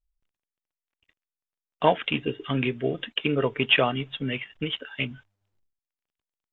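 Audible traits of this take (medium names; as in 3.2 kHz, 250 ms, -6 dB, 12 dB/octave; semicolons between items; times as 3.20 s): noise floor -93 dBFS; spectral tilt -3.0 dB/octave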